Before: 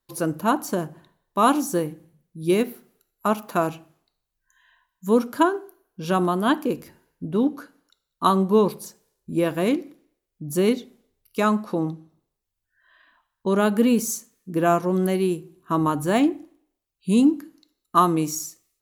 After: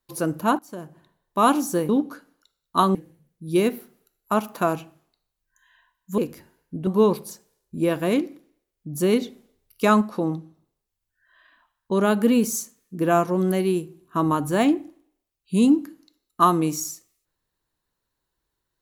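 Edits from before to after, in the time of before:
0.59–1.39 fade in, from -20.5 dB
5.12–6.67 cut
7.36–8.42 move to 1.89
10.75–11.56 gain +3 dB

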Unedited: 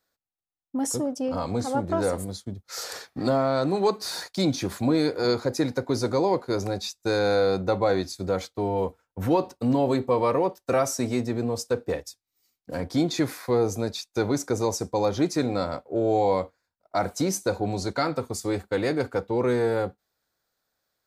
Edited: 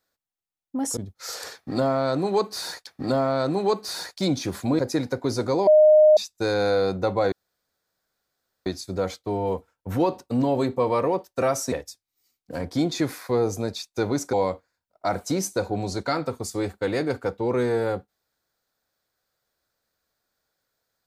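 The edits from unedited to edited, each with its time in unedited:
0.97–2.46 cut
3.04–4.36 loop, 2 plays
4.96–5.44 cut
6.32–6.82 bleep 614 Hz -10.5 dBFS
7.97 insert room tone 1.34 s
11.03–11.91 cut
14.52–16.23 cut

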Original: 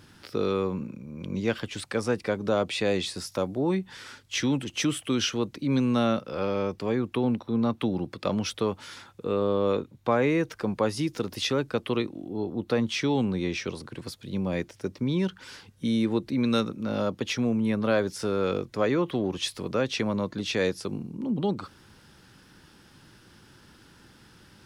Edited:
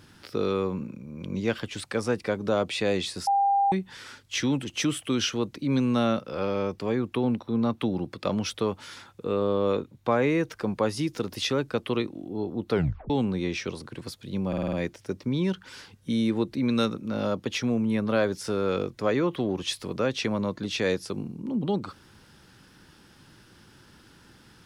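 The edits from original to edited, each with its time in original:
3.27–3.72 bleep 797 Hz -19 dBFS
12.71 tape stop 0.39 s
14.48 stutter 0.05 s, 6 plays

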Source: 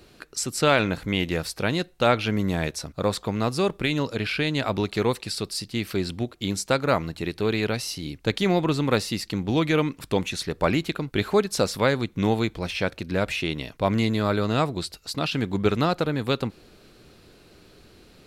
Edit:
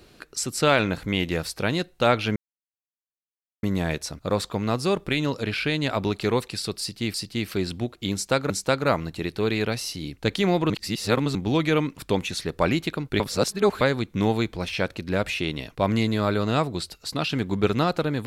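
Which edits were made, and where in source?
2.36 insert silence 1.27 s
5.53–5.87 loop, 2 plays
6.52–6.89 loop, 2 plays
8.72–9.37 reverse
11.22–11.83 reverse

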